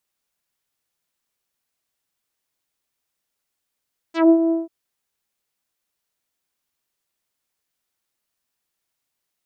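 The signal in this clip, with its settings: synth note saw E4 24 dB/oct, low-pass 590 Hz, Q 1, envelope 4 oct, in 0.11 s, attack 0.155 s, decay 0.08 s, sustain -8 dB, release 0.17 s, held 0.37 s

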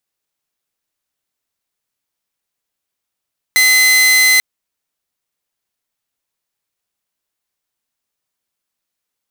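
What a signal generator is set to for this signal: tone saw 2040 Hz -5.5 dBFS 0.84 s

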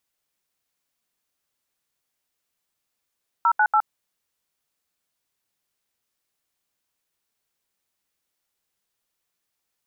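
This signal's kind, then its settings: DTMF "098", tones 67 ms, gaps 76 ms, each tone -17.5 dBFS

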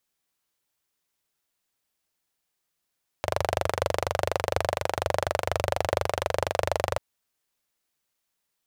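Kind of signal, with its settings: single-cylinder engine model, steady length 3.74 s, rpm 2900, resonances 90/570 Hz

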